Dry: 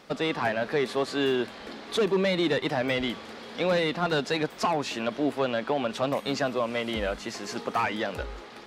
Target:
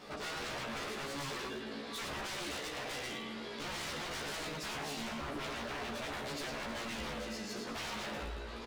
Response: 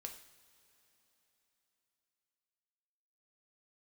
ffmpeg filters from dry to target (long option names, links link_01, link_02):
-filter_complex "[0:a]asettb=1/sr,asplit=3[link_01][link_02][link_03];[link_01]atrim=end=2.344[link_04];[link_02]atrim=start=2.34:end=3.12,asetpts=PTS-STARTPTS,afade=type=in:duration=0.004:curve=qsin,afade=type=out:start_time=0.776:duration=0.004:curve=qsin,highpass=frequency=420:poles=1[link_05];[link_03]atrim=start=3.116[link_06];[link_04][link_05]acrossfade=duration=0.004:curve1=hsin:curve2=qsin[link_07];[link_07][link_06]acrossfade=duration=0.004:curve1=qsin:curve2=hsin,aecho=1:1:108|216|324|432|540:0.531|0.239|0.108|0.0484|0.0218[link_08];[1:a]atrim=start_sample=2205,atrim=end_sample=6174[link_09];[link_08][link_09]afir=irnorm=-1:irlink=0,flanger=delay=16.5:depth=2.1:speed=0.33,aeval=exprs='0.0158*(abs(mod(val(0)/0.0158+3,4)-2)-1)':channel_layout=same,alimiter=level_in=21dB:limit=-24dB:level=0:latency=1:release=56,volume=-21dB,asplit=2[link_10][link_11];[link_11]adelay=14,volume=-3dB[link_12];[link_10][link_12]amix=inputs=2:normalize=0,volume=7.5dB"